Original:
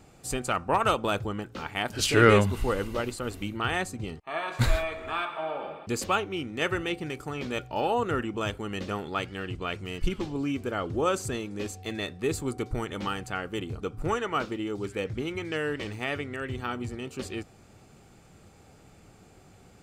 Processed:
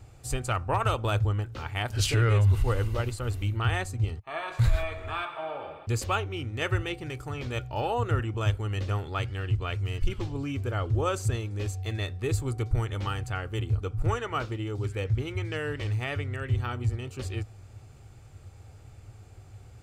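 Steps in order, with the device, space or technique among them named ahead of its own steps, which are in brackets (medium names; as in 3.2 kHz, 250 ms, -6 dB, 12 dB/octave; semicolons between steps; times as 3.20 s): car stereo with a boomy subwoofer (resonant low shelf 140 Hz +8.5 dB, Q 3; peak limiter -13 dBFS, peak gain reduction 10.5 dB); trim -2 dB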